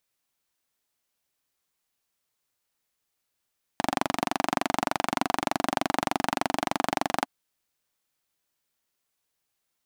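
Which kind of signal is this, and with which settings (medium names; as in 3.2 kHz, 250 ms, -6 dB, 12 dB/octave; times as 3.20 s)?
single-cylinder engine model, steady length 3.46 s, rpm 2800, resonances 280/730 Hz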